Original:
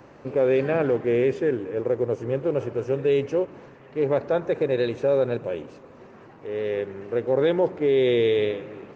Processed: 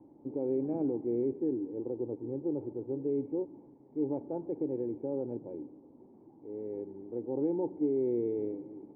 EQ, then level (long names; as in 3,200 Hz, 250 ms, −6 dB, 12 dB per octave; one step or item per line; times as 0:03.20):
formant resonators in series u
0.0 dB